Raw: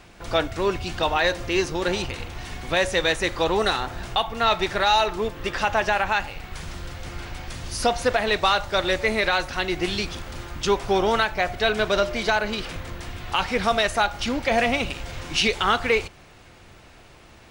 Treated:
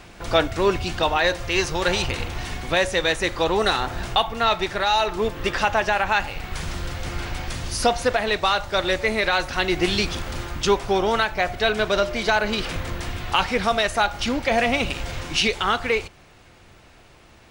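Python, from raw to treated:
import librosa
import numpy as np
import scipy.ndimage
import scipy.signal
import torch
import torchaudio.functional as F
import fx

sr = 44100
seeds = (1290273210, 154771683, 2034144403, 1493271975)

y = fx.peak_eq(x, sr, hz=280.0, db=-9.5, octaves=1.1, at=(1.36, 2.07))
y = fx.rider(y, sr, range_db=4, speed_s=0.5)
y = y * librosa.db_to_amplitude(1.5)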